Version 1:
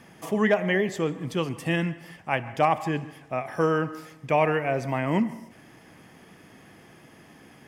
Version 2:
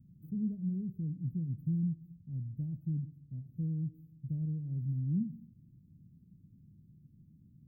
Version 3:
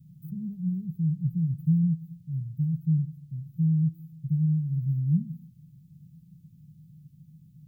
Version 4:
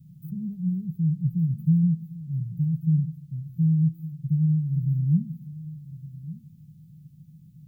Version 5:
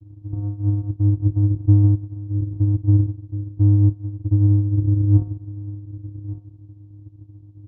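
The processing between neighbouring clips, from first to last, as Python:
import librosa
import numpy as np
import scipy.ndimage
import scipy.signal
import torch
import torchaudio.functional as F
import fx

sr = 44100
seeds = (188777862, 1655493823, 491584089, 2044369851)

y1 = scipy.signal.sosfilt(scipy.signal.cheby2(4, 80, [900.0, 6800.0], 'bandstop', fs=sr, output='sos'), x)
y2 = fx.curve_eq(y1, sr, hz=(100.0, 160.0, 230.0, 350.0, 540.0, 900.0, 1300.0, 2100.0, 3100.0), db=(0, 12, -6, -6, -16, 7, 3, 9, 14))
y3 = y2 + 10.0 ** (-16.0 / 20.0) * np.pad(y2, (int(1158 * sr / 1000.0), 0))[:len(y2)]
y3 = F.gain(torch.from_numpy(y3), 2.5).numpy()
y4 = fx.vocoder(y3, sr, bands=4, carrier='square', carrier_hz=102.0)
y4 = F.gain(torch.from_numpy(y4), 7.0).numpy()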